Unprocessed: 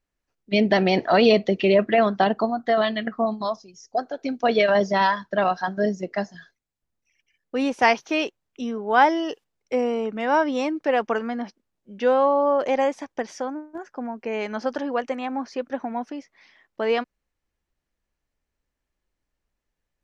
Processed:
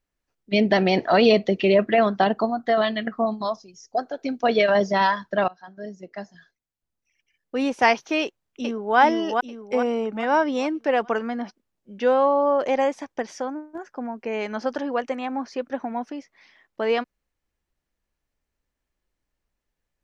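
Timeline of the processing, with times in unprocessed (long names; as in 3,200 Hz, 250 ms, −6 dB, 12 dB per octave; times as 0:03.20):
0:05.48–0:07.70: fade in linear, from −23.5 dB
0:08.22–0:08.98: delay throw 420 ms, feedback 45%, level −3 dB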